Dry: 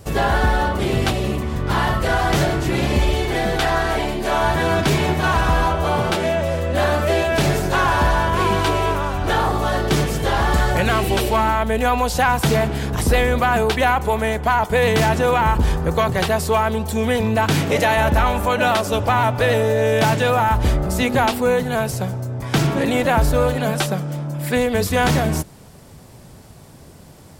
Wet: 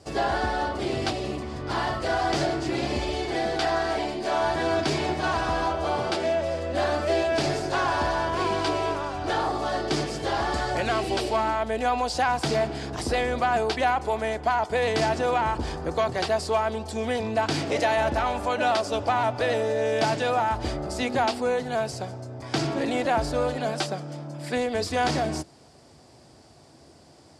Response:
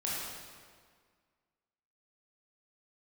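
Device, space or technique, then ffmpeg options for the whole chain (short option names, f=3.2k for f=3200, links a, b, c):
car door speaker: -af "highpass=84,equalizer=f=110:t=q:w=4:g=-5,equalizer=f=180:t=q:w=4:g=-9,equalizer=f=320:t=q:w=4:g=6,equalizer=f=700:t=q:w=4:g=6,equalizer=f=4.8k:t=q:w=4:g=9,lowpass=f=9.1k:w=0.5412,lowpass=f=9.1k:w=1.3066,volume=-8.5dB"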